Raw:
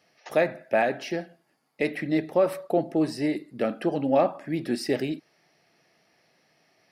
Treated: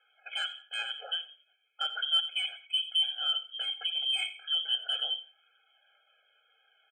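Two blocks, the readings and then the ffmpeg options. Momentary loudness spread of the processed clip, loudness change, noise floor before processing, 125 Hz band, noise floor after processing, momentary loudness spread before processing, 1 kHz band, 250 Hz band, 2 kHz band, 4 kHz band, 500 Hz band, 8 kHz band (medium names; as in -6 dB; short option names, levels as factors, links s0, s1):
8 LU, -3.5 dB, -68 dBFS, under -40 dB, -71 dBFS, 9 LU, -14.0 dB, under -40 dB, -5.0 dB, +17.0 dB, -31.0 dB, -5.0 dB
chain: -filter_complex "[0:a]lowpass=f=2900:t=q:w=0.5098,lowpass=f=2900:t=q:w=0.6013,lowpass=f=2900:t=q:w=0.9,lowpass=f=2900:t=q:w=2.563,afreqshift=-3400,asplit=2[s0][s1];[s1]acompressor=threshold=0.0141:ratio=6,volume=0.794[s2];[s0][s2]amix=inputs=2:normalize=0,bandreject=f=62.76:t=h:w=4,bandreject=f=125.52:t=h:w=4,bandreject=f=188.28:t=h:w=4,bandreject=f=251.04:t=h:w=4,bandreject=f=313.8:t=h:w=4,bandreject=f=376.56:t=h:w=4,bandreject=f=439.32:t=h:w=4,bandreject=f=502.08:t=h:w=4,flanger=delay=0.7:depth=2.2:regen=-41:speed=0.36:shape=triangular,asoftclip=type=tanh:threshold=0.178,asplit=2[s3][s4];[s4]aecho=0:1:87|174:0.141|0.0297[s5];[s3][s5]amix=inputs=2:normalize=0,afftfilt=real='re*eq(mod(floor(b*sr/1024/430),2),1)':imag='im*eq(mod(floor(b*sr/1024/430),2),1)':win_size=1024:overlap=0.75"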